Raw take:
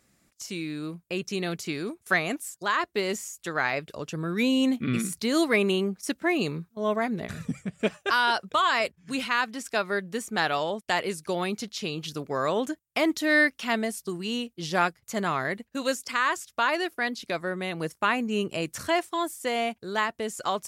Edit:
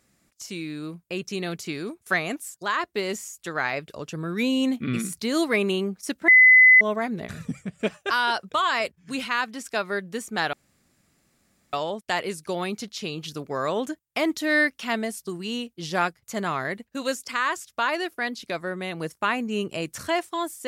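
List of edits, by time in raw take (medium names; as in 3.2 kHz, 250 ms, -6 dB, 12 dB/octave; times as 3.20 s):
6.28–6.81 s: bleep 2.02 kHz -9.5 dBFS
10.53 s: insert room tone 1.20 s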